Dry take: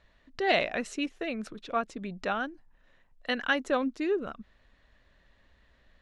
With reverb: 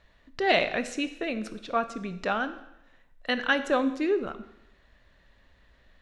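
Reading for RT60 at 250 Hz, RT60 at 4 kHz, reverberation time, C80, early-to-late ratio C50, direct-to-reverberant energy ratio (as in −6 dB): 0.85 s, 0.85 s, 0.85 s, 15.0 dB, 12.5 dB, 10.5 dB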